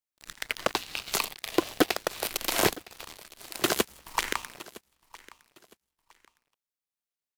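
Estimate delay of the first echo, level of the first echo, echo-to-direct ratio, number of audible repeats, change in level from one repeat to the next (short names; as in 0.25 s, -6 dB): 0.961 s, -20.5 dB, -20.0 dB, 2, -11.0 dB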